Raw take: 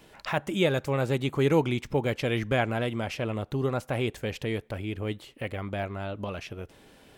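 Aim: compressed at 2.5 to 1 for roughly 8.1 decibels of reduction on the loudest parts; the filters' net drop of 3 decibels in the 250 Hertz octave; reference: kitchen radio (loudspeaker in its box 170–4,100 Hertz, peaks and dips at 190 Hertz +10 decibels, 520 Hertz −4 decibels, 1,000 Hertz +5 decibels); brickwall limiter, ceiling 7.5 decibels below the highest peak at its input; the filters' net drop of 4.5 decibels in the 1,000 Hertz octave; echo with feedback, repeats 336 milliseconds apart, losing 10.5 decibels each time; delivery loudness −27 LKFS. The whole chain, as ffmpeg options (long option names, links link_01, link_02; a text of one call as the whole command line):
ffmpeg -i in.wav -af "equalizer=frequency=250:width_type=o:gain=-6,equalizer=frequency=1000:width_type=o:gain=-8,acompressor=threshold=-34dB:ratio=2.5,alimiter=level_in=5dB:limit=-24dB:level=0:latency=1,volume=-5dB,highpass=170,equalizer=frequency=190:width_type=q:width=4:gain=10,equalizer=frequency=520:width_type=q:width=4:gain=-4,equalizer=frequency=1000:width_type=q:width=4:gain=5,lowpass=frequency=4100:width=0.5412,lowpass=frequency=4100:width=1.3066,aecho=1:1:336|672|1008:0.299|0.0896|0.0269,volume=13dB" out.wav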